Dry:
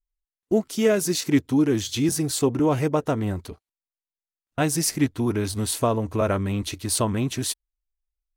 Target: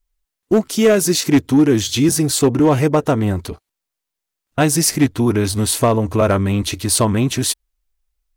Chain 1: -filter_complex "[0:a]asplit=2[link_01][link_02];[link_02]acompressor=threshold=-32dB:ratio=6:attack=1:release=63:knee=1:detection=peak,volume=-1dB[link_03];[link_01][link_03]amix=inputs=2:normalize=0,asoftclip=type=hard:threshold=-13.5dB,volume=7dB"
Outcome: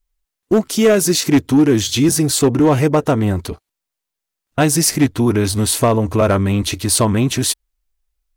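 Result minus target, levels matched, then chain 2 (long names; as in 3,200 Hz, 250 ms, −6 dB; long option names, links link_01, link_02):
downward compressor: peak gain reduction −7 dB
-filter_complex "[0:a]asplit=2[link_01][link_02];[link_02]acompressor=threshold=-40.5dB:ratio=6:attack=1:release=63:knee=1:detection=peak,volume=-1dB[link_03];[link_01][link_03]amix=inputs=2:normalize=0,asoftclip=type=hard:threshold=-13.5dB,volume=7dB"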